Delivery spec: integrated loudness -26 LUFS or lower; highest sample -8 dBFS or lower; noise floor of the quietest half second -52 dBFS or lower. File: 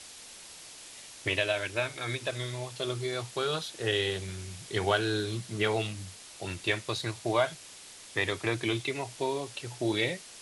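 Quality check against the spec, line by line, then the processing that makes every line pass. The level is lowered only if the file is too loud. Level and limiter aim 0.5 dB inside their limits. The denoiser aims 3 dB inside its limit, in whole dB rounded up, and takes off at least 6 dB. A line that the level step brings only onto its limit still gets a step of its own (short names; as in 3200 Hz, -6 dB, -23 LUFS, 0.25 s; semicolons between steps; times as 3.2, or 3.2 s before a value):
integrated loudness -31.5 LUFS: OK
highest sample -12.5 dBFS: OK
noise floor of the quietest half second -49 dBFS: fail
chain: denoiser 6 dB, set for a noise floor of -49 dBFS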